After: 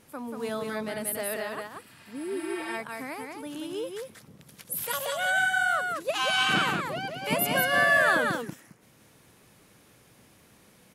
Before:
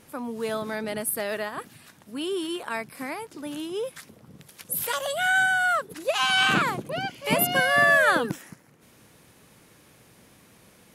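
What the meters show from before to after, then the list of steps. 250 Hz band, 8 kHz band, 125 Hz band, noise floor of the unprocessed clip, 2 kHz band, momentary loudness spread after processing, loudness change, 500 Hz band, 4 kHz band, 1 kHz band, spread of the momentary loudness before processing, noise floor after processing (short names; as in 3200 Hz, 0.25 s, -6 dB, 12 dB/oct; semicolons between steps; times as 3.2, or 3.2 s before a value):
-2.5 dB, -2.5 dB, -2.5 dB, -56 dBFS, -2.5 dB, 16 LU, -2.5 dB, -2.5 dB, -2.5 dB, -2.5 dB, 16 LU, -59 dBFS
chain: echo 0.185 s -4 dB; spectral repair 1.88–2.71, 670–7700 Hz both; gain -4 dB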